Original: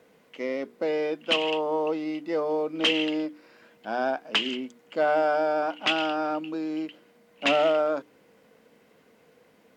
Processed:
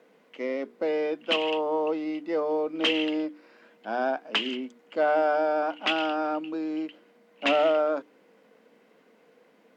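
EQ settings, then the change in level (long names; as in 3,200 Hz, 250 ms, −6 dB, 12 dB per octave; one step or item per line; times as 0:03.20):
high-pass filter 190 Hz 24 dB per octave
high-shelf EQ 5,300 Hz −9 dB
0.0 dB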